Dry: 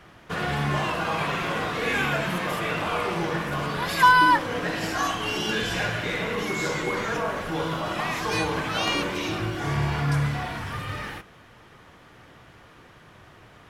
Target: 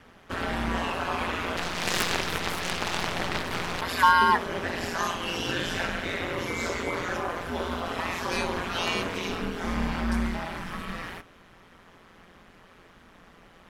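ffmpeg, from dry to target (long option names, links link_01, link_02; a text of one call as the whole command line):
ffmpeg -i in.wav -filter_complex "[0:a]aeval=exprs='val(0)*sin(2*PI*87*n/s)':channel_layout=same,asplit=3[link_01][link_02][link_03];[link_01]afade=type=out:start_time=1.56:duration=0.02[link_04];[link_02]aeval=exprs='0.211*(cos(1*acos(clip(val(0)/0.211,-1,1)))-cos(1*PI/2))+0.0596*(cos(6*acos(clip(val(0)/0.211,-1,1)))-cos(6*PI/2))+0.075*(cos(7*acos(clip(val(0)/0.211,-1,1)))-cos(7*PI/2))+0.0668*(cos(8*acos(clip(val(0)/0.211,-1,1)))-cos(8*PI/2))':channel_layout=same,afade=type=in:start_time=1.56:duration=0.02,afade=type=out:start_time=3.8:duration=0.02[link_05];[link_03]afade=type=in:start_time=3.8:duration=0.02[link_06];[link_04][link_05][link_06]amix=inputs=3:normalize=0" out.wav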